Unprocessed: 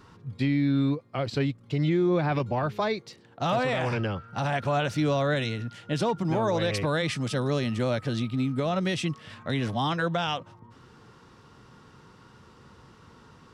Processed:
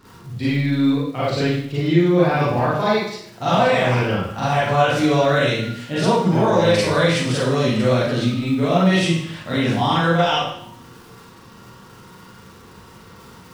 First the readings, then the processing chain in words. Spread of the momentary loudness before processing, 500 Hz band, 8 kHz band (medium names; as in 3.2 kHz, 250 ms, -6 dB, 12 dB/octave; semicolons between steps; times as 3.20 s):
7 LU, +9.5 dB, +9.5 dB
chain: crackle 84 per s -40 dBFS; Schroeder reverb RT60 0.65 s, combs from 33 ms, DRR -9 dB